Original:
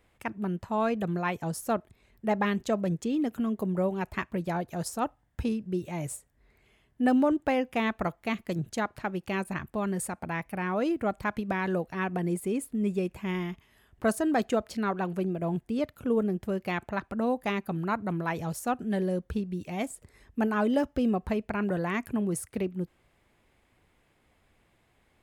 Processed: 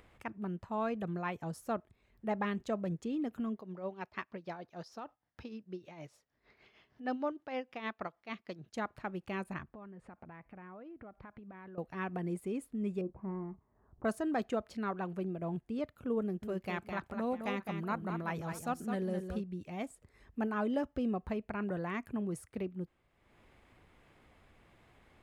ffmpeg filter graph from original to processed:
-filter_complex "[0:a]asettb=1/sr,asplit=3[a][b][c];[a]atrim=end=3.574[d];[b]atrim=start=3.57:end=8.74,asetpts=PTS-STARTPTS,afade=t=in:d=0.004:c=qsin,afade=t=out:st=5.166:d=0.004:c=qsin,highshelf=f=6.7k:t=q:w=3:g=-8.5,tremolo=f=6.5:d=0.68,highpass=f=330:p=1[e];[c]atrim=start=8.736[f];[d][e]acrossfade=d=0.004:c1=hsin:c2=qsin[g];[g][f]acrossfade=d=0.004:c1=qsin:c2=hsin,asettb=1/sr,asplit=3[h][i][j];[h]atrim=end=9.634[k];[i]atrim=start=9.63:end=11.78,asetpts=PTS-STARTPTS,afade=t=in:d=0.004:c=qsin,afade=t=out:st=2.146:d=0.004:c=qsin,lowpass=2.2k,acompressor=threshold=-40dB:ratio=8:attack=3.2:release=140:knee=1:detection=peak[l];[j]atrim=start=11.776[m];[k][l]acrossfade=d=0.004:c1=hsin:c2=qsin[n];[n][m]acrossfade=d=0.004:c1=qsin:c2=hsin,asettb=1/sr,asplit=3[o][p][q];[o]atrim=end=13.014[r];[p]atrim=start=13.01:end=14.05,asetpts=PTS-STARTPTS,afade=t=in:d=0.004:c=qsin,afade=t=out:st=1.036:d=0.004:c=qsin,lowpass=f=1.1k:w=0.5412,lowpass=f=1.1k:w=1.3066,asplit=2[s][t];[t]adelay=31,volume=-14dB[u];[s][u]amix=inputs=2:normalize=0,atrim=end_sample=45864[v];[q]atrim=start=14.046[w];[r][v]acrossfade=d=0.004:c1=hsin:c2=qsin[x];[x][w]acrossfade=d=0.004:c1=qsin:c2=hsin,asettb=1/sr,asplit=3[y][z][aa];[y]atrim=end=16.214[ab];[z]atrim=start=16.21:end=19.44,asetpts=PTS-STARTPTS,afade=t=in:d=0.004:c=qsin,afade=t=out:st=3.226:d=0.004:c=qsin,highshelf=f=4.5k:g=6.5,aecho=1:1:211|632:0.447|0.106,atrim=end_sample=142443[ac];[aa]atrim=start=19.436[ad];[ab][ac]acrossfade=d=0.004:c1=hsin:c2=qsin[ae];[ae][ad]acrossfade=d=0.004:c1=qsin:c2=hsin,highshelf=f=6.1k:g=-10,acompressor=mode=upward:threshold=-44dB:ratio=2.5,equalizer=f=1.2k:t=o:w=0.27:g=2.5,volume=-7.5dB"

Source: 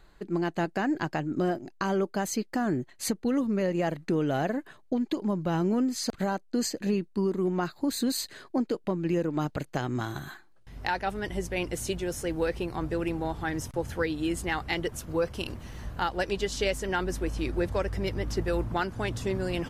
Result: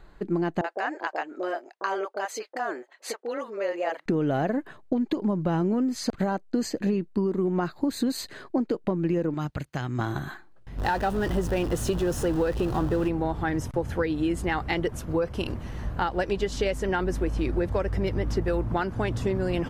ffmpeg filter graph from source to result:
-filter_complex "[0:a]asettb=1/sr,asplit=3[a][b][c];[a]atrim=end=0.614[d];[b]atrim=start=0.61:end=4.06,asetpts=PTS-STARTPTS,afade=t=in:d=0.004:c=qsin,afade=t=out:st=3.446:d=0.004:c=qsin,highpass=f=480:w=0.5412,highpass=f=480:w=1.3066,highshelf=f=8.8k:g=-8,acrossover=split=680[e][f];[f]adelay=30[g];[e][g]amix=inputs=2:normalize=0,atrim=end_sample=152145[h];[c]atrim=start=4.056[i];[d][h]acrossfade=d=0.004:c1=hsin:c2=qsin[j];[j][i]acrossfade=d=0.004:c1=qsin:c2=hsin,asettb=1/sr,asplit=3[k][l][m];[k]atrim=end=9.344[n];[l]atrim=start=9.34:end=9.99,asetpts=PTS-STARTPTS,afade=t=in:d=0.004:c=qsin,afade=t=out:st=0.646:d=0.004:c=qsin,highpass=42,equalizer=f=460:w=0.47:g=-11.5[o];[m]atrim=start=9.986[p];[n][o]acrossfade=d=0.004:c1=hsin:c2=qsin[q];[q][p]acrossfade=d=0.004:c1=qsin:c2=hsin,asettb=1/sr,asplit=3[r][s][t];[r]atrim=end=10.784[u];[s]atrim=start=10.78:end=13.08,asetpts=PTS-STARTPTS,afade=t=in:d=0.004:c=qsin,afade=t=out:st=2.296:d=0.004:c=qsin,aeval=exprs='val(0)+0.5*0.0237*sgn(val(0))':c=same,equalizer=f=2.2k:t=o:w=0.2:g=-13[v];[t]atrim=start=13.076[w];[u][v]acrossfade=d=0.004:c1=hsin:c2=qsin[x];[x][w]acrossfade=d=0.004:c1=qsin:c2=hsin,highshelf=f=2.8k:g=-10.5,acompressor=threshold=-28dB:ratio=6,volume=6.5dB"

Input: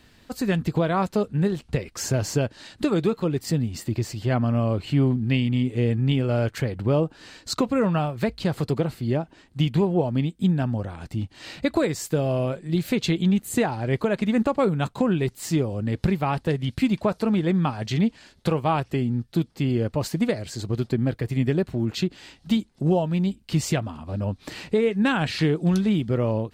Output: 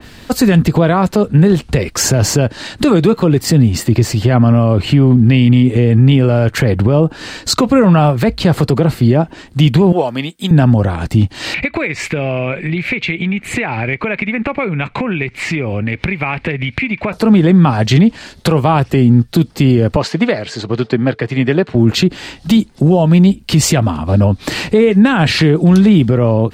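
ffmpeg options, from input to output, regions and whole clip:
-filter_complex "[0:a]asettb=1/sr,asplit=3[a][b][c];[a]atrim=end=9.924[d];[b]atrim=start=9.92:end=10.51,asetpts=PTS-STARTPTS,afade=t=in:d=0.004:c=qsin,afade=t=out:st=0.586:d=0.004:c=qsin,highpass=f=1.3k:p=1,highshelf=f=12k:g=4[e];[c]atrim=start=10.506[f];[d][e]acrossfade=d=0.004:c1=hsin:c2=qsin[g];[g][f]acrossfade=d=0.004:c1=qsin:c2=hsin,asettb=1/sr,asplit=3[h][i][j];[h]atrim=end=11.544[k];[i]atrim=start=11.54:end=17.13,asetpts=PTS-STARTPTS,afade=t=in:d=0.004:c=qsin,afade=t=out:st=5.586:d=0.004:c=qsin,lowpass=f=2.3k:t=q:w=8.4,aemphasis=mode=production:type=75kf,acompressor=threshold=-33dB:ratio=6:attack=3.2:release=140:knee=1:detection=peak[l];[j]atrim=start=17.126[m];[k][l]acrossfade=d=0.004:c1=hsin:c2=qsin[n];[n][m]acrossfade=d=0.004:c1=qsin:c2=hsin,asettb=1/sr,asplit=3[o][p][q];[o]atrim=end=19.964[r];[p]atrim=start=19.96:end=21.75,asetpts=PTS-STARTPTS,afade=t=in:d=0.004:c=qsin,afade=t=out:st=1.786:d=0.004:c=qsin,highpass=120,lowpass=4.2k,lowshelf=f=500:g=-10,aeval=exprs='val(0)+0.001*sin(2*PI*440*n/s)':c=same[s];[q]atrim=start=21.746[t];[r][s]acrossfade=d=0.004:c1=hsin:c2=qsin[u];[u][t]acrossfade=d=0.004:c1=qsin:c2=hsin,acrossover=split=200[v][w];[w]acompressor=threshold=-21dB:ratio=6[x];[v][x]amix=inputs=2:normalize=0,alimiter=level_in=19dB:limit=-1dB:release=50:level=0:latency=1,adynamicequalizer=threshold=0.0316:dfrequency=2800:dqfactor=0.7:tfrequency=2800:tqfactor=0.7:attack=5:release=100:ratio=0.375:range=2:mode=cutabove:tftype=highshelf,volume=-1dB"

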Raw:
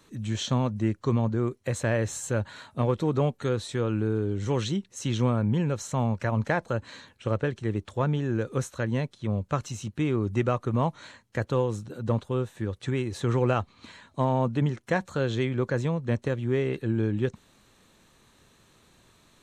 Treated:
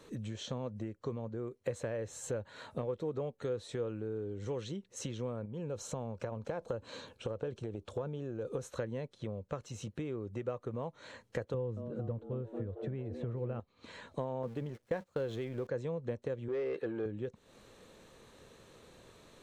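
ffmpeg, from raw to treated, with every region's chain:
-filter_complex "[0:a]asettb=1/sr,asplit=3[a][b][c];[a]atrim=end=5.454[d];[b]atrim=start=5.45:end=8.65,asetpts=PTS-STARTPTS,afade=t=in:d=0.004:c=qsin,afade=t=out:st=3.196:d=0.004:c=qsin,equalizer=f=1.9k:w=4.9:g=-11,acompressor=threshold=-27dB:ratio=6:attack=3.2:release=140:knee=1:detection=peak[e];[c]atrim=start=8.646[f];[d][e]acrossfade=d=0.004:c1=hsin:c2=qsin[g];[g][f]acrossfade=d=0.004:c1=qsin:c2=hsin,asettb=1/sr,asplit=3[h][i][j];[h]atrim=end=11.544[k];[i]atrim=start=11.54:end=13.6,asetpts=PTS-STARTPTS,afade=t=in:d=0.004:c=qsin,afade=t=out:st=2.056:d=0.004:c=qsin,bass=f=250:g=12,treble=f=4k:g=-14,asplit=7[l][m][n][o][p][q][r];[m]adelay=225,afreqshift=110,volume=-13dB[s];[n]adelay=450,afreqshift=220,volume=-18.4dB[t];[o]adelay=675,afreqshift=330,volume=-23.7dB[u];[p]adelay=900,afreqshift=440,volume=-29.1dB[v];[q]adelay=1125,afreqshift=550,volume=-34.4dB[w];[r]adelay=1350,afreqshift=660,volume=-39.8dB[x];[l][s][t][u][v][w][x]amix=inputs=7:normalize=0,atrim=end_sample=90846[y];[j]atrim=start=13.596[z];[k][y]acrossfade=d=0.004:c1=hsin:c2=qsin[aa];[aa][z]acrossfade=d=0.004:c1=qsin:c2=hsin,asettb=1/sr,asplit=3[ab][ac][ad];[ab]atrim=end=14.434[ae];[ac]atrim=start=14.43:end=15.67,asetpts=PTS-STARTPTS,afade=t=in:d=0.004:c=qsin,afade=t=out:st=1.236:d=0.004:c=qsin,aeval=exprs='val(0)+0.5*0.0158*sgn(val(0))':c=same,agate=range=-26dB:threshold=-33dB:ratio=16:release=100:detection=peak[af];[ad]atrim=start=15.666[ag];[ae][af]acrossfade=d=0.004:c1=hsin:c2=qsin[ah];[ah][ag]acrossfade=d=0.004:c1=qsin:c2=hsin,asettb=1/sr,asplit=3[ai][aj][ak];[ai]atrim=end=16.484[al];[aj]atrim=start=16.48:end=17.06,asetpts=PTS-STARTPTS,afade=t=in:d=0.004:c=qsin,afade=t=out:st=0.576:d=0.004:c=qsin,lowshelf=f=230:g=-9.5,asplit=2[am][an];[an]highpass=f=720:p=1,volume=18dB,asoftclip=type=tanh:threshold=-17.5dB[ao];[am][ao]amix=inputs=2:normalize=0,lowpass=f=1.4k:p=1,volume=-6dB[ap];[ak]atrim=start=17.056[aq];[al][ap]acrossfade=d=0.004:c1=hsin:c2=qsin[ar];[ar][aq]acrossfade=d=0.004:c1=qsin:c2=hsin,highshelf=f=8k:g=-5,acompressor=threshold=-39dB:ratio=8,equalizer=f=490:w=2.1:g=10.5"

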